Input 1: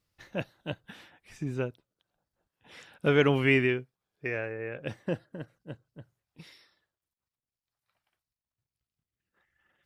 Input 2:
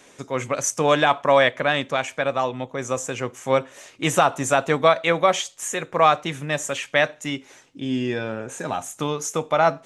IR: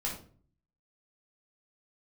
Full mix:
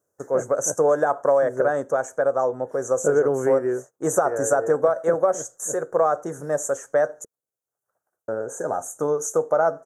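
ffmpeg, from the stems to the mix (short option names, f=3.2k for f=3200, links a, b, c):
-filter_complex "[0:a]highpass=120,volume=-2.5dB[a];[1:a]agate=range=-30dB:threshold=-41dB:ratio=16:detection=peak,volume=-6.5dB,asplit=3[b][c][d];[b]atrim=end=7.25,asetpts=PTS-STARTPTS,afade=t=out:st=7.246:d=0.004:c=hsin[e];[c]atrim=start=7.25:end=8.28,asetpts=PTS-STARTPTS,volume=0[f];[d]atrim=start=8.28,asetpts=PTS-STARTPTS,afade=t=in:d=0.004:c=hsin[g];[e][f][g]concat=n=3:v=0:a=1[h];[a][h]amix=inputs=2:normalize=0,firequalizer=gain_entry='entry(230,0);entry(460,14);entry(1000,2);entry(1500,6);entry(2400,-28);entry(4100,-23);entry(6200,7)':delay=0.05:min_phase=1,acompressor=threshold=-15dB:ratio=6"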